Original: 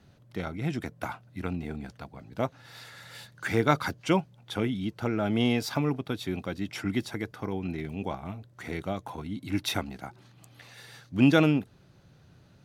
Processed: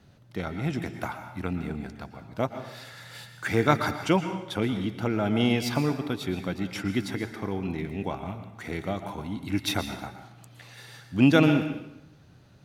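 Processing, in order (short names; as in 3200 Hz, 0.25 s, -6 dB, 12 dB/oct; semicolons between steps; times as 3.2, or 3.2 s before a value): plate-style reverb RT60 0.86 s, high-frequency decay 0.9×, pre-delay 0.105 s, DRR 8 dB; gain +1.5 dB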